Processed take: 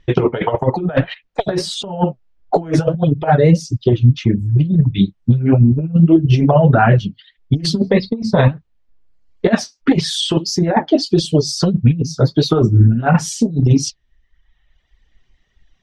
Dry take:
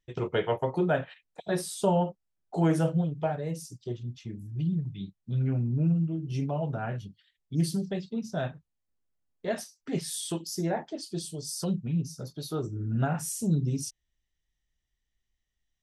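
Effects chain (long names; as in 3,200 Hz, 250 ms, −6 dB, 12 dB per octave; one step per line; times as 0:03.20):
reverb reduction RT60 1 s
0:07.74–0:08.48: EQ curve with evenly spaced ripples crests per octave 0.94, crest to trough 13 dB
compressor whose output falls as the input rises −33 dBFS, ratio −0.5
flanger 1.6 Hz, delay 0.2 ms, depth 8.6 ms, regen +59%
high-frequency loss of the air 190 metres
0:00.83–0:01.71: tube saturation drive 31 dB, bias 0.25
boost into a limiter +28 dB
level −1 dB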